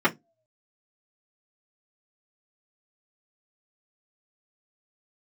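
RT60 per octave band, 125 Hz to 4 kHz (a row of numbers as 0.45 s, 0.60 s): 0.25 s, 0.25 s, 0.25 s, 0.15 s, 0.15 s, 0.15 s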